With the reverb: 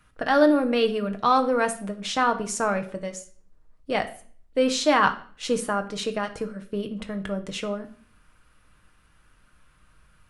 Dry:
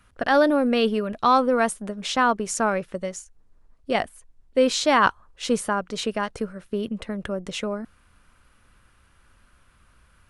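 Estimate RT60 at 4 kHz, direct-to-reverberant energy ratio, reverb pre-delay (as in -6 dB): 0.45 s, 5.5 dB, 6 ms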